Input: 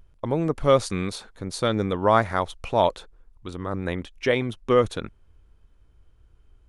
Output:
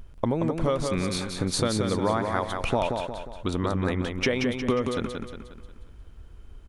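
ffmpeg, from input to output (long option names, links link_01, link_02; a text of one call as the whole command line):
ffmpeg -i in.wav -filter_complex "[0:a]equalizer=frequency=240:width=7.5:gain=6,acompressor=threshold=-31dB:ratio=12,asplit=2[link_01][link_02];[link_02]aecho=0:1:179|358|537|716|895|1074:0.562|0.259|0.119|0.0547|0.0252|0.0116[link_03];[link_01][link_03]amix=inputs=2:normalize=0,volume=9dB" out.wav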